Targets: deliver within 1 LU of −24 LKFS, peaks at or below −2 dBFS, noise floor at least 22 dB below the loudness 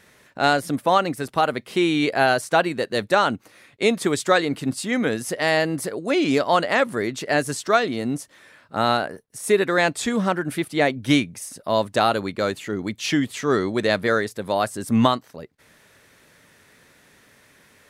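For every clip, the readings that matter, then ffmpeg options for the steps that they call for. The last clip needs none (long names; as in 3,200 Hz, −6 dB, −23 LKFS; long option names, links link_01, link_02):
integrated loudness −22.0 LKFS; sample peak −2.5 dBFS; target loudness −24.0 LKFS
→ -af "volume=-2dB"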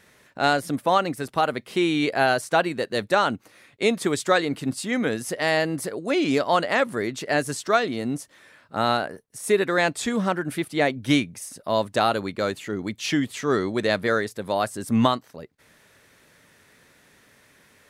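integrated loudness −24.0 LKFS; sample peak −4.5 dBFS; background noise floor −58 dBFS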